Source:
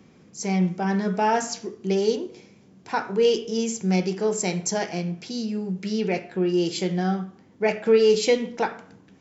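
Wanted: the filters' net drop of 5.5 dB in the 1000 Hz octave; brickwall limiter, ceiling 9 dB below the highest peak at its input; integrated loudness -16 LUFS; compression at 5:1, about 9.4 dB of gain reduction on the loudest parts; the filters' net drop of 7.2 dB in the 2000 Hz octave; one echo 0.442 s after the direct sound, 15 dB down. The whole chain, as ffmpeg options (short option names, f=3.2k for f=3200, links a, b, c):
-af "equalizer=f=1k:t=o:g=-6,equalizer=f=2k:t=o:g=-7.5,acompressor=threshold=-26dB:ratio=5,alimiter=level_in=2dB:limit=-24dB:level=0:latency=1,volume=-2dB,aecho=1:1:442:0.178,volume=18.5dB"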